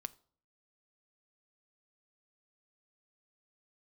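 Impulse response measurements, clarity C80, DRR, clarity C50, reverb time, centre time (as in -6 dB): 25.0 dB, 11.0 dB, 22.0 dB, 0.50 s, 2 ms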